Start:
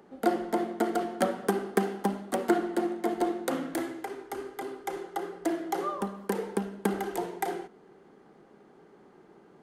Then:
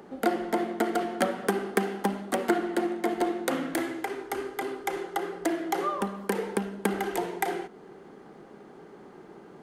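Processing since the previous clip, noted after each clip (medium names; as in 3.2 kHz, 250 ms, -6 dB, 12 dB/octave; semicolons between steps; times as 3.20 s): compression 1.5:1, threshold -43 dBFS, peak gain reduction 9 dB; dynamic bell 2.3 kHz, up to +5 dB, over -55 dBFS, Q 1.1; trim +7.5 dB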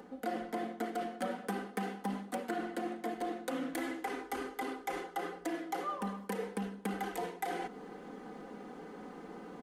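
comb 4 ms, depth 69%; reverse; compression 4:1, threshold -36 dBFS, peak gain reduction 16 dB; reverse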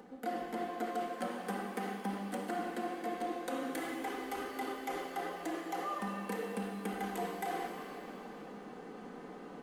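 pitch-shifted reverb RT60 2.3 s, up +7 st, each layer -8 dB, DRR 2.5 dB; trim -2.5 dB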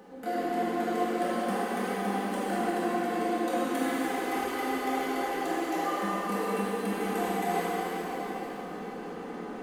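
plate-style reverb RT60 3.7 s, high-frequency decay 0.85×, DRR -8 dB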